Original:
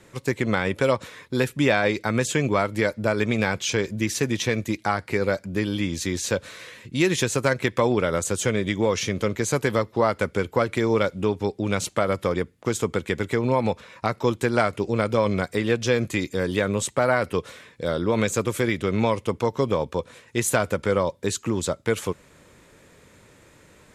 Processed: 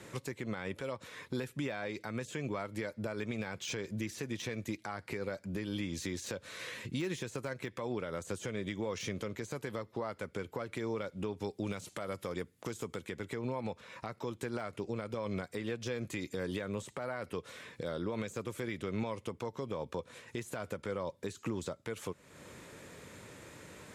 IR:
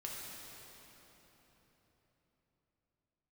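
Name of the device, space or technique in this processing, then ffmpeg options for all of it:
podcast mastering chain: -filter_complex "[0:a]asettb=1/sr,asplit=3[a][b][c];[a]atrim=end=11.404[d];[b]atrim=start=11.4:end=13.07,asetpts=PTS-STARTPTS,afade=t=in:d=0.004:c=qsin,afade=t=out:st=1.666:d=0.004:c=qsin,aemphasis=mode=production:type=cd[e];[c]atrim=start=13.066[f];[d][e]acrossfade=d=0.004:c1=hsin:c2=qsin[g];[g][f]acrossfade=d=0.004:c1=qsin:c2=hsin,highpass=76,deesser=0.65,acompressor=threshold=-42dB:ratio=2,alimiter=level_in=4dB:limit=-24dB:level=0:latency=1:release=203,volume=-4dB,volume=2dB" -ar 48000 -c:a libmp3lame -b:a 112k

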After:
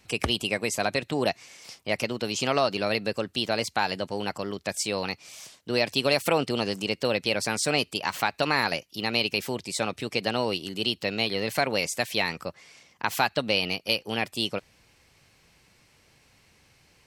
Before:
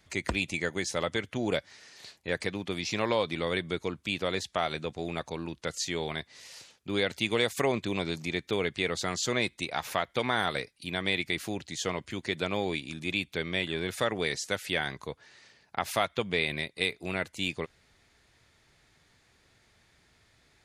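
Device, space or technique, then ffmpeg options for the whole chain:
nightcore: -af "asetrate=53361,aresample=44100,volume=4dB"

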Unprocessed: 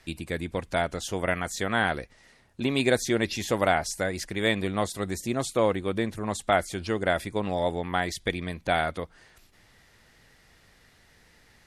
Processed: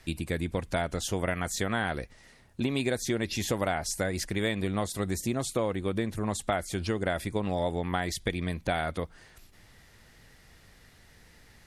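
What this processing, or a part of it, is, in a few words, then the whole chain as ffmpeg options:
ASMR close-microphone chain: -af "lowshelf=f=220:g=5.5,acompressor=threshold=-25dB:ratio=5,highshelf=f=8.9k:g=5"

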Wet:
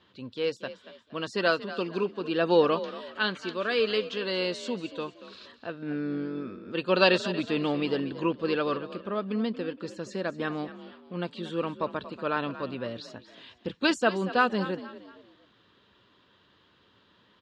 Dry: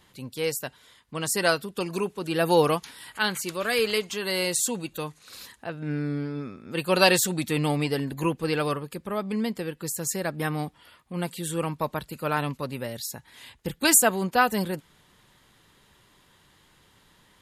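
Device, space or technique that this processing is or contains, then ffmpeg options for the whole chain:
frequency-shifting delay pedal into a guitar cabinet: -filter_complex "[0:a]asplit=4[a][b][c][d];[b]adelay=233,afreqshift=45,volume=-14.5dB[e];[c]adelay=466,afreqshift=90,volume=-23.1dB[f];[d]adelay=699,afreqshift=135,volume=-31.8dB[g];[a][e][f][g]amix=inputs=4:normalize=0,highpass=110,equalizer=f=150:t=q:w=4:g=-10,equalizer=f=810:t=q:w=4:g=-8,equalizer=f=2.1k:t=q:w=4:g=-9,lowpass=f=4k:w=0.5412,lowpass=f=4k:w=1.3066"

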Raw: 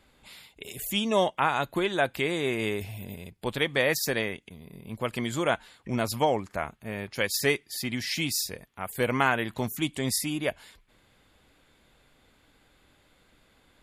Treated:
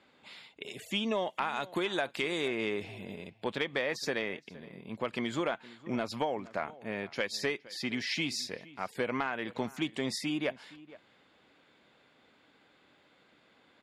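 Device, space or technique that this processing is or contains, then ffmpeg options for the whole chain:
AM radio: -filter_complex "[0:a]asettb=1/sr,asplit=3[a][b][c];[a]atrim=end=1.304[d];[b]atrim=start=1.3:end=2.48,asetpts=PTS-STARTPTS,afade=t=in:d=0.004:c=qsin,afade=t=out:st=1.176:d=0.004:c=qsin,equalizer=f=11k:t=o:w=1.9:g=13.5[e];[c]atrim=start=2.476[f];[d][e]acrossfade=d=0.004:c1=hsin:c2=qsin[g];[g][f]acrossfade=d=0.004:c1=qsin:c2=hsin,highpass=190,lowpass=4.4k,acompressor=threshold=-27dB:ratio=10,asoftclip=type=tanh:threshold=-16.5dB,asplit=2[h][i];[i]adelay=466.5,volume=-19dB,highshelf=f=4k:g=-10.5[j];[h][j]amix=inputs=2:normalize=0"

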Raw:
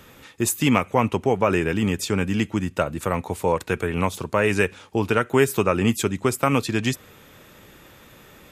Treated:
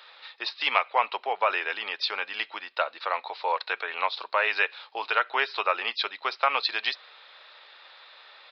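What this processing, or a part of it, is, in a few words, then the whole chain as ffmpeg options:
musical greeting card: -af "aresample=11025,aresample=44100,highpass=f=680:w=0.5412,highpass=f=680:w=1.3066,equalizer=f=4k:t=o:w=0.27:g=11.5"

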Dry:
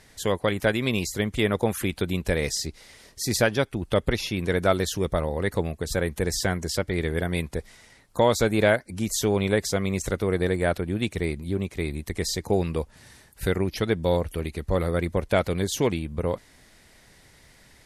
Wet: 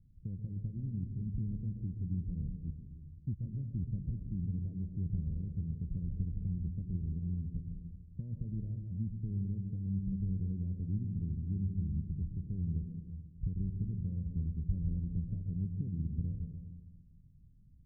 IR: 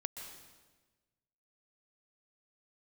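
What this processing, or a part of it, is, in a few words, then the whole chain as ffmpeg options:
club heard from the street: -filter_complex "[0:a]alimiter=limit=-18.5dB:level=0:latency=1:release=170,lowpass=f=180:w=0.5412,lowpass=f=180:w=1.3066[a];[1:a]atrim=start_sample=2205[b];[a][b]afir=irnorm=-1:irlink=0"

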